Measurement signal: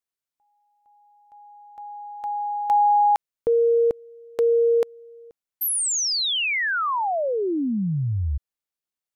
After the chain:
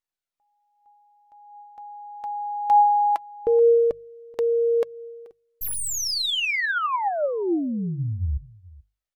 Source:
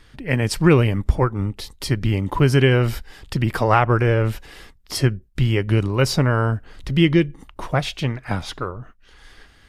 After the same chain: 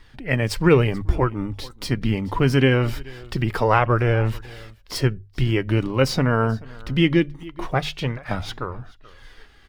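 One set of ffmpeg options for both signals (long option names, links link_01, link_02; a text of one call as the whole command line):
ffmpeg -i in.wav -filter_complex "[0:a]bandreject=frequency=50:width_type=h:width=6,bandreject=frequency=100:width_type=h:width=6,bandreject=frequency=150:width_type=h:width=6,aecho=1:1:432:0.075,flanger=delay=1:depth=3.6:regen=61:speed=0.23:shape=triangular,acrossover=split=5700[link_01][link_02];[link_02]aeval=exprs='max(val(0),0)':channel_layout=same[link_03];[link_01][link_03]amix=inputs=2:normalize=0,volume=3.5dB" out.wav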